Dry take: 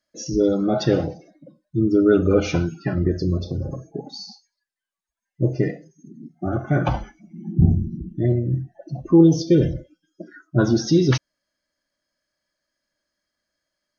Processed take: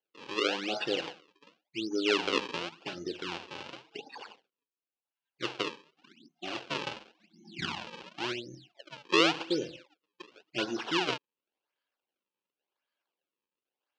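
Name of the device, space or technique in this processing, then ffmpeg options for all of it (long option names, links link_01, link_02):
circuit-bent sampling toy: -af "acrusher=samples=35:mix=1:aa=0.000001:lfo=1:lforange=56:lforate=0.91,highpass=560,equalizer=frequency=630:width_type=q:width=4:gain=-8,equalizer=frequency=1200:width_type=q:width=4:gain=-5,equalizer=frequency=1900:width_type=q:width=4:gain=-7,equalizer=frequency=2800:width_type=q:width=4:gain=7,lowpass=frequency=5100:width=0.5412,lowpass=frequency=5100:width=1.3066,volume=-5dB"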